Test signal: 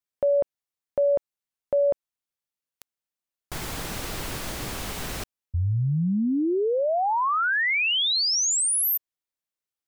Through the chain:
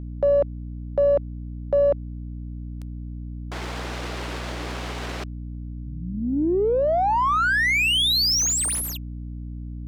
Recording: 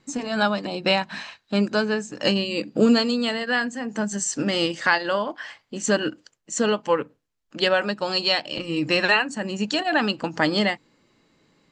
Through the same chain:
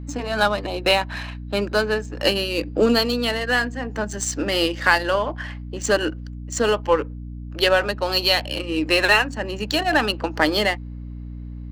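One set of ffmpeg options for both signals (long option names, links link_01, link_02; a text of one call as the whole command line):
ffmpeg -i in.wav -af "highpass=frequency=270:width=0.5412,highpass=frequency=270:width=1.3066,adynamicsmooth=sensitivity=6:basefreq=2800,aeval=exprs='val(0)+0.0178*(sin(2*PI*60*n/s)+sin(2*PI*2*60*n/s)/2+sin(2*PI*3*60*n/s)/3+sin(2*PI*4*60*n/s)/4+sin(2*PI*5*60*n/s)/5)':channel_layout=same,aeval=exprs='0.596*(cos(1*acos(clip(val(0)/0.596,-1,1)))-cos(1*PI/2))+0.0119*(cos(6*acos(clip(val(0)/0.596,-1,1)))-cos(6*PI/2))':channel_layout=same,volume=3dB" out.wav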